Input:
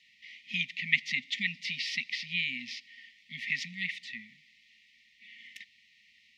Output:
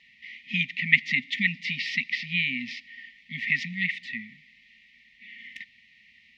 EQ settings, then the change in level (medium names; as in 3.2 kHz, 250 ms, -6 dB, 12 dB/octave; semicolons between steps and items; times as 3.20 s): tilt EQ -2.5 dB/octave; peaking EQ 940 Hz +14.5 dB 2.9 oct; +1.0 dB